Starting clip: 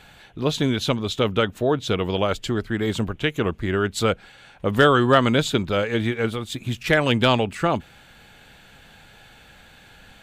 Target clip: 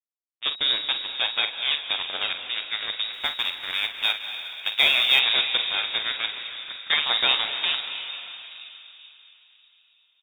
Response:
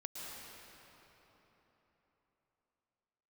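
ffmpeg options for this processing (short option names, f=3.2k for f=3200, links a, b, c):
-filter_complex "[0:a]acrusher=bits=2:mix=0:aa=0.5,firequalizer=gain_entry='entry(140,0);entry(510,-9);entry(1200,-4)':delay=0.05:min_phase=1,asplit=2[a][b];[1:a]atrim=start_sample=2205,adelay=46[c];[b][c]afir=irnorm=-1:irlink=0,volume=-4dB[d];[a][d]amix=inputs=2:normalize=0,lowpass=f=3.2k:t=q:w=0.5098,lowpass=f=3.2k:t=q:w=0.6013,lowpass=f=3.2k:t=q:w=0.9,lowpass=f=3.2k:t=q:w=2.563,afreqshift=-3800,asplit=3[e][f][g];[e]afade=t=out:st=3.12:d=0.02[h];[f]acrusher=bits=6:mode=log:mix=0:aa=0.000001,afade=t=in:st=3.12:d=0.02,afade=t=out:st=5.19:d=0.02[i];[g]afade=t=in:st=5.19:d=0.02[j];[h][i][j]amix=inputs=3:normalize=0"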